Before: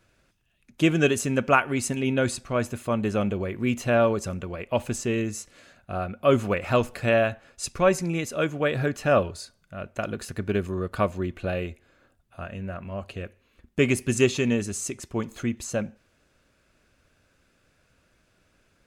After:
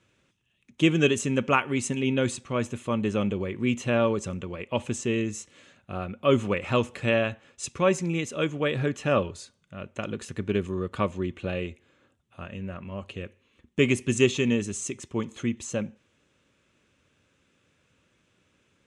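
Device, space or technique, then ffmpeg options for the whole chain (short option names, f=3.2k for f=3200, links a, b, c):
car door speaker: -af "highpass=92,equalizer=f=680:t=q:w=4:g=-9,equalizer=f=1.5k:t=q:w=4:g=-6,equalizer=f=3.2k:t=q:w=4:g=4,equalizer=f=4.7k:t=q:w=4:g=-8,lowpass=f=8.6k:w=0.5412,lowpass=f=8.6k:w=1.3066"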